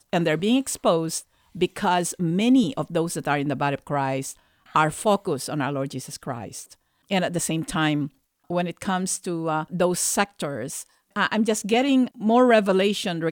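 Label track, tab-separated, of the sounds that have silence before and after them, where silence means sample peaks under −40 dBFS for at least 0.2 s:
1.550000	4.330000	sound
4.710000	6.730000	sound
7.090000	8.080000	sound
8.500000	10.860000	sound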